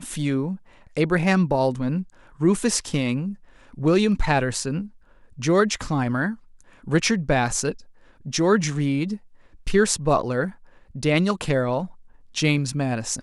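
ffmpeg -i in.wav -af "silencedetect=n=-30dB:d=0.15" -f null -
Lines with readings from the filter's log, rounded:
silence_start: 0.55
silence_end: 0.97 | silence_duration: 0.41
silence_start: 2.02
silence_end: 2.41 | silence_duration: 0.38
silence_start: 3.33
silence_end: 3.78 | silence_duration: 0.45
silence_start: 4.85
silence_end: 5.39 | silence_duration: 0.54
silence_start: 6.34
silence_end: 6.87 | silence_duration: 0.54
silence_start: 7.72
silence_end: 8.26 | silence_duration: 0.54
silence_start: 9.16
silence_end: 9.67 | silence_duration: 0.51
silence_start: 10.49
silence_end: 10.95 | silence_duration: 0.46
silence_start: 11.86
silence_end: 12.36 | silence_duration: 0.50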